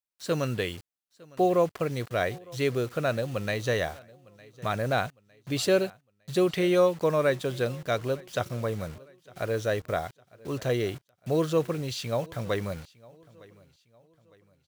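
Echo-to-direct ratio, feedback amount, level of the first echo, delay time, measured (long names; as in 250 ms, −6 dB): −23.0 dB, 40%, −23.5 dB, 907 ms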